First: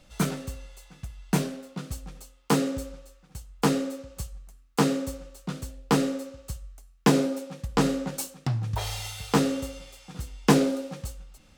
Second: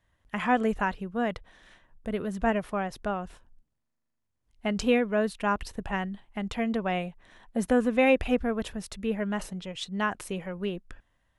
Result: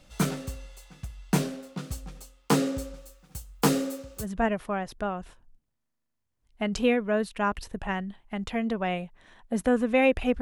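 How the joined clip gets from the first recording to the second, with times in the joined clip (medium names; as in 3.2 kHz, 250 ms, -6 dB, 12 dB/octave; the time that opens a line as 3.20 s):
first
2.94–4.27 s: treble shelf 10 kHz +11 dB
4.22 s: go over to second from 2.26 s, crossfade 0.10 s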